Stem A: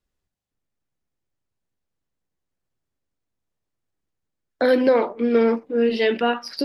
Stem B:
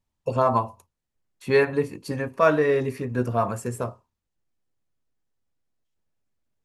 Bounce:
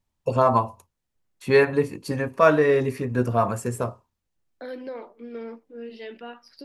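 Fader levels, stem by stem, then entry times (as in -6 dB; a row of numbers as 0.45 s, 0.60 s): -18.5 dB, +2.0 dB; 0.00 s, 0.00 s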